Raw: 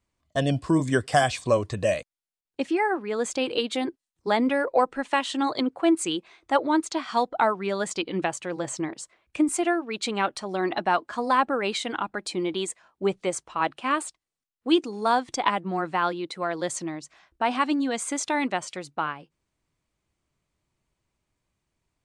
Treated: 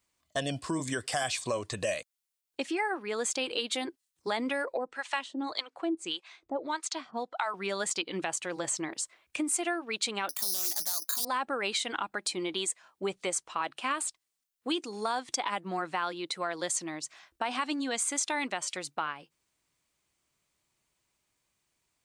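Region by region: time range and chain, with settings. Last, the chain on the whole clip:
0:04.77–0:07.54: low-pass filter 7,500 Hz + two-band tremolo in antiphase 1.7 Hz, depth 100%, crossover 640 Hz
0:10.29–0:11.25: parametric band 500 Hz −6.5 dB 0.32 octaves + bad sample-rate conversion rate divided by 8×, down filtered, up zero stuff + highs frequency-modulated by the lows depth 0.29 ms
whole clip: brickwall limiter −14.5 dBFS; spectral tilt +2.5 dB per octave; downward compressor 2 to 1, threshold −32 dBFS

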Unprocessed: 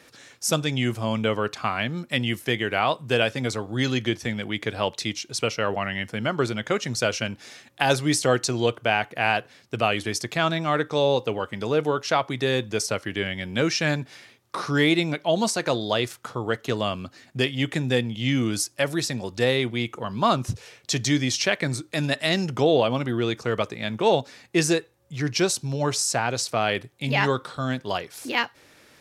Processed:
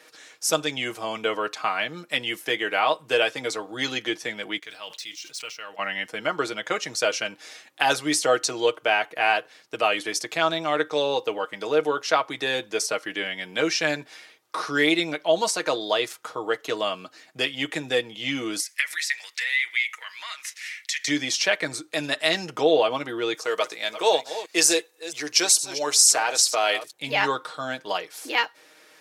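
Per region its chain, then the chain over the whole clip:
0:04.59–0:05.79: running median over 3 samples + guitar amp tone stack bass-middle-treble 5-5-5 + level that may fall only so fast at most 85 dB per second
0:18.60–0:21.08: high-shelf EQ 3,900 Hz +6 dB + downward compressor 10 to 1, threshold −26 dBFS + high-pass with resonance 2,000 Hz, resonance Q 7.3
0:23.34–0:26.93: delay that plays each chunk backwards 223 ms, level −12.5 dB + bass and treble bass −13 dB, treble +9 dB
whole clip: high-pass filter 390 Hz 12 dB per octave; comb filter 6.4 ms, depth 55%

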